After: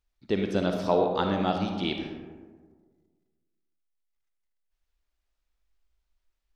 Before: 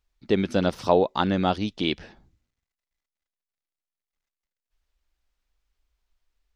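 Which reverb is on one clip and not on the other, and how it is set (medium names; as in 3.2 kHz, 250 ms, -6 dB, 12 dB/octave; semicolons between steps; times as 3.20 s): algorithmic reverb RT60 1.6 s, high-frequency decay 0.35×, pre-delay 15 ms, DRR 3.5 dB; trim -5 dB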